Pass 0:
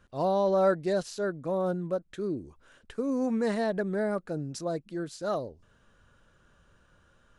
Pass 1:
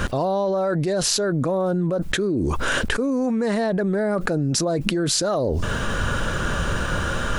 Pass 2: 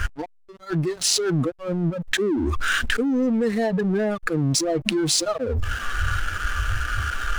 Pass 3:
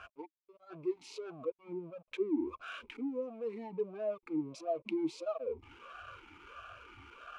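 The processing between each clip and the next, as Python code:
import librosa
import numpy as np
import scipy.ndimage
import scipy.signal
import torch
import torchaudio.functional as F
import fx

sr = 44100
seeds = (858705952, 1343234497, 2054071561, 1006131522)

y1 = fx.env_flatten(x, sr, amount_pct=100)
y1 = F.gain(torch.from_numpy(y1), -1.0).numpy()
y2 = fx.noise_reduce_blind(y1, sr, reduce_db=28)
y2 = fx.backlash(y2, sr, play_db=-28.0)
y2 = F.gain(torch.from_numpy(y2), 2.0).numpy()
y3 = fx.vowel_sweep(y2, sr, vowels='a-u', hz=1.5)
y3 = F.gain(torch.from_numpy(y3), -5.0).numpy()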